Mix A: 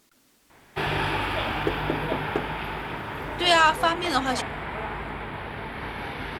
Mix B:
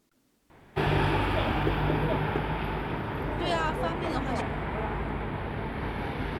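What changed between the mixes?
speech -10.0 dB; second sound -6.5 dB; master: add tilt shelf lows +5 dB, about 700 Hz

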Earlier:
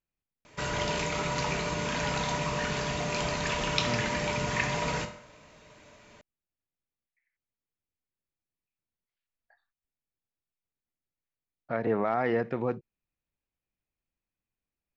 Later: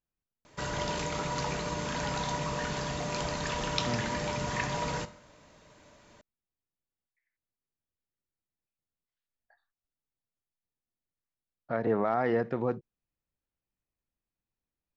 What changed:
background: send -8.0 dB; master: add peaking EQ 2.4 kHz -6 dB 0.59 oct

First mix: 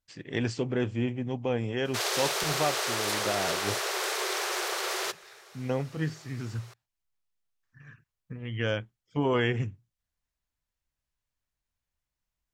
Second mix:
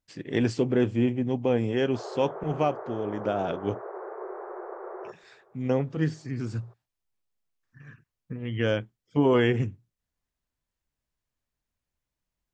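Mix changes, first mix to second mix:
speech: add peaking EQ 300 Hz +6.5 dB 2.3 oct; background: add Gaussian low-pass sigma 8.7 samples

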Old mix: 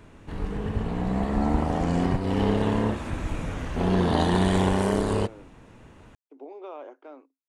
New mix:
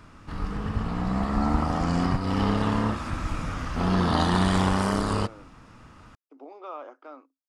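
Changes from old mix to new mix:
background: add peaking EQ 550 Hz -3 dB 0.7 oct; master: add graphic EQ with 31 bands 400 Hz -7 dB, 1.25 kHz +11 dB, 5 kHz +10 dB

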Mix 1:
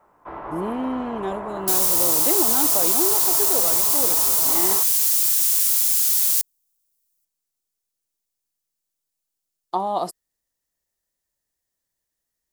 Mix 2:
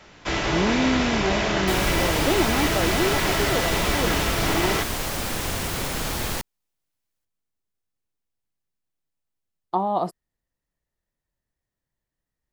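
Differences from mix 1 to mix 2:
first sound: remove four-pole ladder low-pass 1.2 kHz, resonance 55%; second sound: remove pre-emphasis filter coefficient 0.9; master: add tone controls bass +8 dB, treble -13 dB

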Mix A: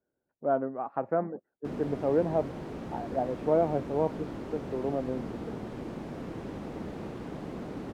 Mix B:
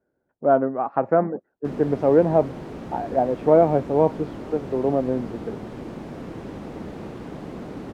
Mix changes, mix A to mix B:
speech +9.5 dB; background +3.5 dB

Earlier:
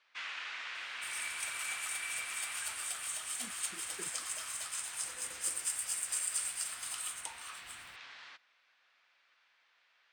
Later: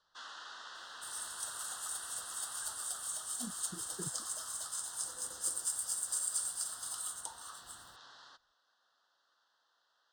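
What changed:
speech: remove high-pass 350 Hz; master: add Butterworth band-stop 2.3 kHz, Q 1.1

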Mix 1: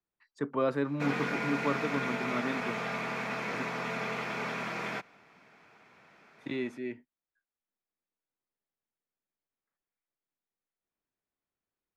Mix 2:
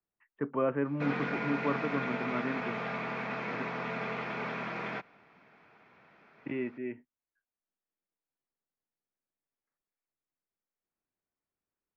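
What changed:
speech: add steep low-pass 3.1 kHz 96 dB/octave; master: add distance through air 200 m

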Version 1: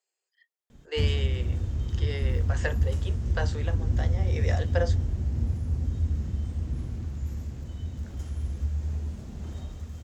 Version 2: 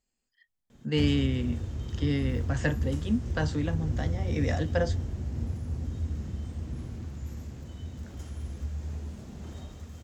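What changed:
speech: remove steep high-pass 360 Hz 72 dB/octave; master: add bass shelf 71 Hz -12 dB

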